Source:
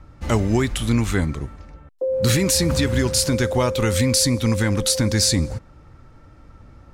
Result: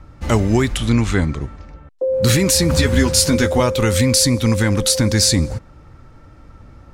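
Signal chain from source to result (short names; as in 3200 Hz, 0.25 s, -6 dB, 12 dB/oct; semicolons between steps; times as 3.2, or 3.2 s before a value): 0.77–2.14 LPF 7400 Hz 12 dB/oct; 2.72–3.6 doubler 12 ms -3.5 dB; gain +3.5 dB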